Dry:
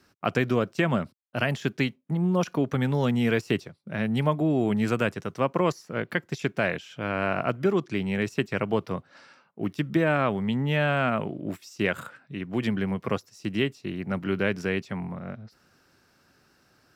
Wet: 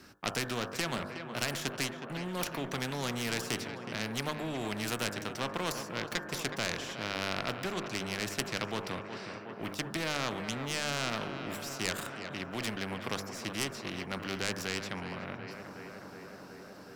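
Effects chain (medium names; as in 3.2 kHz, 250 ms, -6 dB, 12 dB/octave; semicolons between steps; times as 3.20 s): tracing distortion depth 0.13 ms; peaking EQ 260 Hz +2.5 dB; de-hum 49.78 Hz, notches 36; in parallel at -8 dB: one-sided clip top -29.5 dBFS; on the sum: tape echo 368 ms, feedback 83%, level -14 dB, low-pass 2.2 kHz; spectrum-flattening compressor 2:1; trim -4.5 dB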